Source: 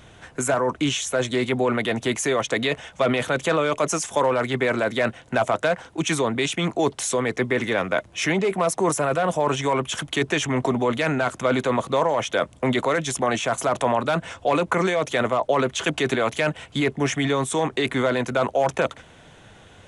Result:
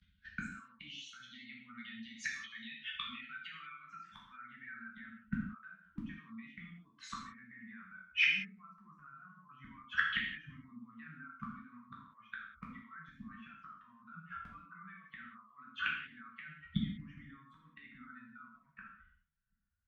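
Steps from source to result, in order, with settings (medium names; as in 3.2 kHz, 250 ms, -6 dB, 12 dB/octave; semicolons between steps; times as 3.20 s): expander on every frequency bin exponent 2; gain riding 0.5 s; low-pass sweep 5.1 kHz -> 1.1 kHz, 1.76–5.21 s; peak limiter -23.5 dBFS, peak gain reduction 13 dB; dynamic bell 220 Hz, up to +3 dB, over -45 dBFS, Q 0.73; gate -59 dBFS, range -22 dB; three-band isolator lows -23 dB, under 230 Hz, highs -23 dB, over 4.3 kHz; inverted gate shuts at -35 dBFS, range -34 dB; elliptic band-stop 220–1400 Hz, stop band 40 dB; gated-style reverb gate 220 ms falling, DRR -4 dB; trim +18 dB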